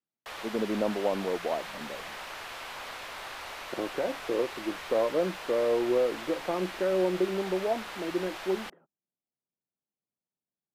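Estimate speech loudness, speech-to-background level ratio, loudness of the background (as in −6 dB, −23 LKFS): −30.5 LKFS, 9.0 dB, −39.5 LKFS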